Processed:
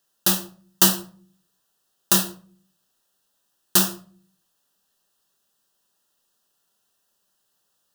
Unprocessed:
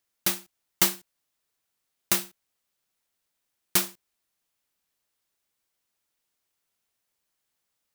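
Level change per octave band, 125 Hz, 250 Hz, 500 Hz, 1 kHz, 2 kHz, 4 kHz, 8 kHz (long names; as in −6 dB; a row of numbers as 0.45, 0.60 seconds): +11.0, +10.5, +6.5, +7.0, +2.5, +6.5, +6.5 decibels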